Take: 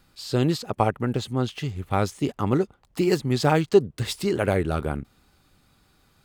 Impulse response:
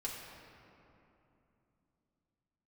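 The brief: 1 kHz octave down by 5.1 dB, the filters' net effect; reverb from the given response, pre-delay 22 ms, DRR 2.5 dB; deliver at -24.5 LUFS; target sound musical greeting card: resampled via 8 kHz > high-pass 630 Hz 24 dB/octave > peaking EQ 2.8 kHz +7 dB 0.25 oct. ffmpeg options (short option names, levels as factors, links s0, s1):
-filter_complex "[0:a]equalizer=f=1000:t=o:g=-6.5,asplit=2[s0][s1];[1:a]atrim=start_sample=2205,adelay=22[s2];[s1][s2]afir=irnorm=-1:irlink=0,volume=0.708[s3];[s0][s3]amix=inputs=2:normalize=0,aresample=8000,aresample=44100,highpass=f=630:w=0.5412,highpass=f=630:w=1.3066,equalizer=f=2800:t=o:w=0.25:g=7,volume=2.51"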